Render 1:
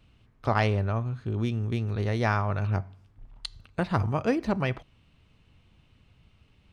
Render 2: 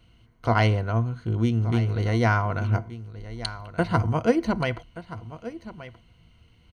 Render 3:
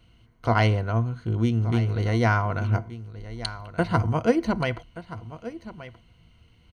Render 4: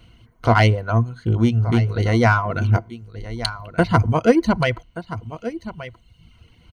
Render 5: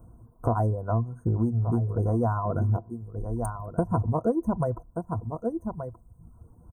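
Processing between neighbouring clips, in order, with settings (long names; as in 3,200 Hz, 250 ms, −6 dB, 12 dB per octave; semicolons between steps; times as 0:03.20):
EQ curve with evenly spaced ripples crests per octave 1.9, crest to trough 10 dB; single-tap delay 1,177 ms −15 dB; level +2 dB
no processing that can be heard
reverb reduction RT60 0.8 s; in parallel at −6.5 dB: soft clipping −23 dBFS, distortion −9 dB; on the sum: level +5 dB
inverse Chebyshev band-stop filter 2,200–4,500 Hz, stop band 60 dB; downward compressor 4 to 1, threshold −23 dBFS, peak gain reduction 13 dB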